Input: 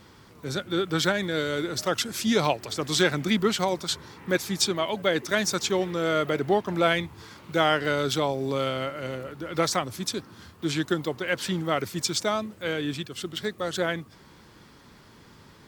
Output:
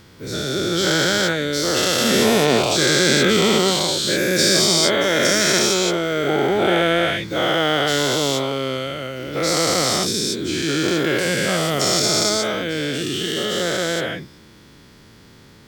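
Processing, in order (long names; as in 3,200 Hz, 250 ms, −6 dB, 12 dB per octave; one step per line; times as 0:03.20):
every bin's largest magnitude spread in time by 480 ms
parametric band 1,000 Hz −6.5 dB 1 octave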